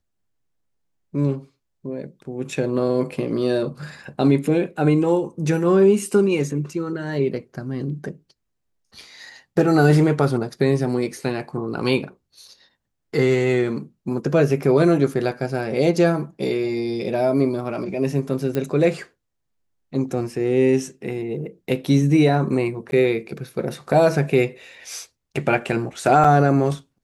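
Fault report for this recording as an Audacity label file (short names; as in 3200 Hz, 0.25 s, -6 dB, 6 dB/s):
18.550000	18.550000	pop -12 dBFS
22.910000	22.920000	gap
26.240000	26.250000	gap 5.3 ms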